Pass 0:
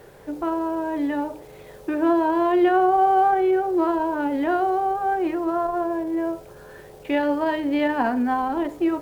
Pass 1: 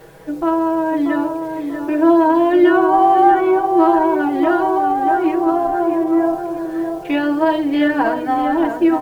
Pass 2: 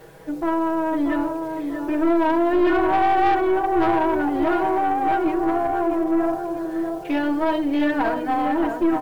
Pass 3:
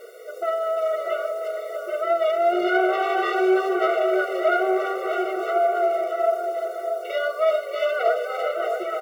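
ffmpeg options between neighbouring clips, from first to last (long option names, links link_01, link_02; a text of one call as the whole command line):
ffmpeg -i in.wav -filter_complex "[0:a]aecho=1:1:6.2:0.92,asplit=2[link_01][link_02];[link_02]adelay=637,lowpass=frequency=1900:poles=1,volume=-6dB,asplit=2[link_03][link_04];[link_04]adelay=637,lowpass=frequency=1900:poles=1,volume=0.39,asplit=2[link_05][link_06];[link_06]adelay=637,lowpass=frequency=1900:poles=1,volume=0.39,asplit=2[link_07][link_08];[link_08]adelay=637,lowpass=frequency=1900:poles=1,volume=0.39,asplit=2[link_09][link_10];[link_10]adelay=637,lowpass=frequency=1900:poles=1,volume=0.39[link_11];[link_03][link_05][link_07][link_09][link_11]amix=inputs=5:normalize=0[link_12];[link_01][link_12]amix=inputs=2:normalize=0,volume=2.5dB" out.wav
ffmpeg -i in.wav -af "aeval=exprs='(tanh(3.98*val(0)+0.35)-tanh(0.35))/3.98':channel_layout=same,volume=-2dB" out.wav
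ffmpeg -i in.wav -filter_complex "[0:a]asplit=2[link_01][link_02];[link_02]adelay=340,highpass=300,lowpass=3400,asoftclip=type=hard:threshold=-21.5dB,volume=-8dB[link_03];[link_01][link_03]amix=inputs=2:normalize=0,afftfilt=real='re*eq(mod(floor(b*sr/1024/380),2),1)':imag='im*eq(mod(floor(b*sr/1024/380),2),1)':win_size=1024:overlap=0.75,volume=5dB" out.wav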